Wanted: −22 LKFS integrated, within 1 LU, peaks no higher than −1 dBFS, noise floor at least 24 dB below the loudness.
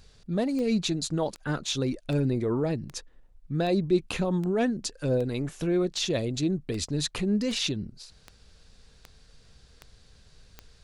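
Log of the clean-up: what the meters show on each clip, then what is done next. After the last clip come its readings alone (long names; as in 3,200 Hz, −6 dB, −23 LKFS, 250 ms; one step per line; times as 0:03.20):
number of clicks 14; integrated loudness −28.0 LKFS; sample peak −13.0 dBFS; target loudness −22.0 LKFS
→ click removal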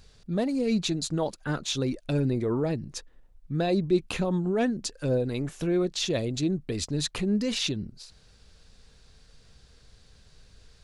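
number of clicks 0; integrated loudness −28.0 LKFS; sample peak −13.0 dBFS; target loudness −22.0 LKFS
→ level +6 dB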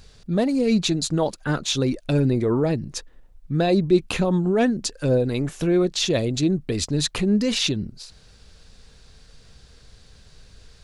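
integrated loudness −22.0 LKFS; sample peak −7.0 dBFS; background noise floor −51 dBFS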